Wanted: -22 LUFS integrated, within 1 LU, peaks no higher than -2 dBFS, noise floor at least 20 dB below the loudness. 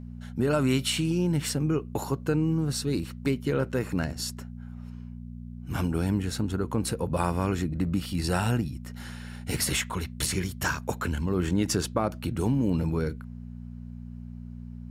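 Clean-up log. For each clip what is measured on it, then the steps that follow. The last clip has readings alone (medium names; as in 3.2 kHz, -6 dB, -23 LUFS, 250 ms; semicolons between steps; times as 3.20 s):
hum 60 Hz; highest harmonic 240 Hz; hum level -37 dBFS; loudness -28.5 LUFS; peak level -11.5 dBFS; loudness target -22.0 LUFS
-> de-hum 60 Hz, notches 4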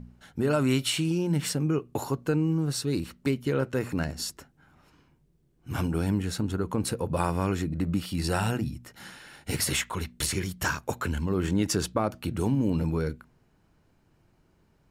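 hum not found; loudness -28.5 LUFS; peak level -11.5 dBFS; loudness target -22.0 LUFS
-> trim +6.5 dB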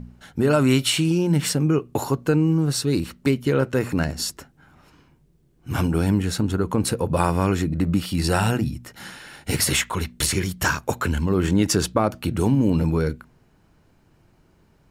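loudness -22.0 LUFS; peak level -5.0 dBFS; noise floor -59 dBFS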